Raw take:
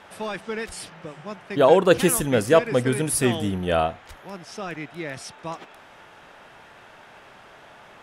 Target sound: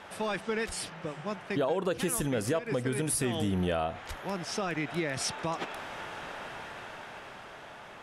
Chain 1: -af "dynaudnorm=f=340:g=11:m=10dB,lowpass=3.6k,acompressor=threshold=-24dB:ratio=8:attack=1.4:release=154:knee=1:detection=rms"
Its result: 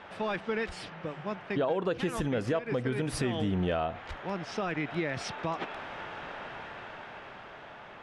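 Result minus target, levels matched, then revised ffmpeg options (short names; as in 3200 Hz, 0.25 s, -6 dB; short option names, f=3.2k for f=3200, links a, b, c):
8000 Hz band -11.5 dB
-af "dynaudnorm=f=340:g=11:m=10dB,lowpass=13k,acompressor=threshold=-24dB:ratio=8:attack=1.4:release=154:knee=1:detection=rms"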